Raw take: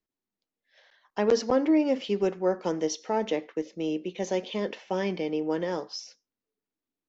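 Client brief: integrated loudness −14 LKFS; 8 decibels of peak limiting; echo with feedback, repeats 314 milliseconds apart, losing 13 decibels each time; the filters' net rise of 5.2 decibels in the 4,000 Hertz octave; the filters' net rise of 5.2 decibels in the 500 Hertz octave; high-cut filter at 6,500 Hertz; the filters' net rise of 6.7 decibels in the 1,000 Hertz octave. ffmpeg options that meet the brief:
ffmpeg -i in.wav -af "lowpass=6500,equalizer=frequency=500:width_type=o:gain=4.5,equalizer=frequency=1000:width_type=o:gain=6.5,equalizer=frequency=4000:width_type=o:gain=8,alimiter=limit=-15.5dB:level=0:latency=1,aecho=1:1:314|628|942:0.224|0.0493|0.0108,volume=12.5dB" out.wav

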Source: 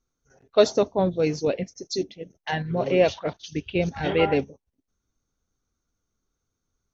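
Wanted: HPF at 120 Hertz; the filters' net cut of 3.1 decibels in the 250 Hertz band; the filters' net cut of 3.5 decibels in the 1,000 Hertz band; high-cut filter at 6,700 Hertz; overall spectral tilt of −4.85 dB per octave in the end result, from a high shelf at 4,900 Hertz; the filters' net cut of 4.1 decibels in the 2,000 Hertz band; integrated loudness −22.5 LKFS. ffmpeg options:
ffmpeg -i in.wav -af "highpass=120,lowpass=6700,equalizer=frequency=250:width_type=o:gain=-4,equalizer=frequency=1000:width_type=o:gain=-4,equalizer=frequency=2000:width_type=o:gain=-3.5,highshelf=frequency=4900:gain=-3.5,volume=4.5dB" out.wav

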